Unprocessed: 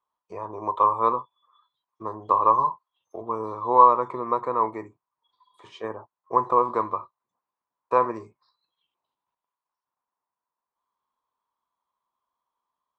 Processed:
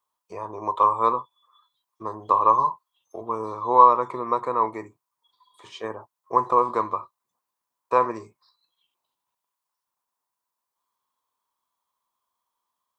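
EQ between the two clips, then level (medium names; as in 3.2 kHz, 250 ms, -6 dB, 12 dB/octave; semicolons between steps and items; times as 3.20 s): treble shelf 3.4 kHz +11 dB; 0.0 dB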